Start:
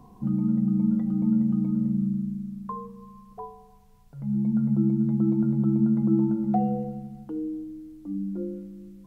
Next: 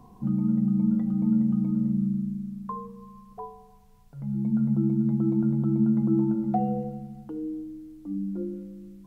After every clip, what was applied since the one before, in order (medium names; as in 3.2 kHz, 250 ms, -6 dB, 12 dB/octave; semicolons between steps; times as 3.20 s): de-hum 52.44 Hz, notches 12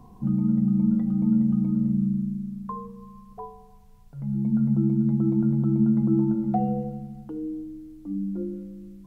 bass shelf 140 Hz +5.5 dB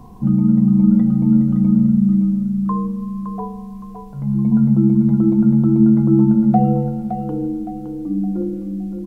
feedback delay 565 ms, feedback 38%, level -8 dB; trim +8.5 dB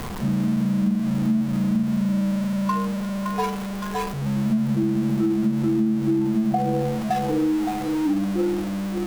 jump at every zero crossing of -18 dBFS; spectral noise reduction 8 dB; compression 10:1, threshold -18 dBFS, peak gain reduction 9.5 dB